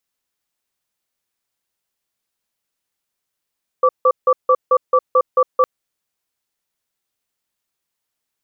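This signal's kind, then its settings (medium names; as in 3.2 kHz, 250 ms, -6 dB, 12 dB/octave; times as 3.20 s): cadence 512 Hz, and 1.16 kHz, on 0.06 s, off 0.16 s, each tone -12 dBFS 1.81 s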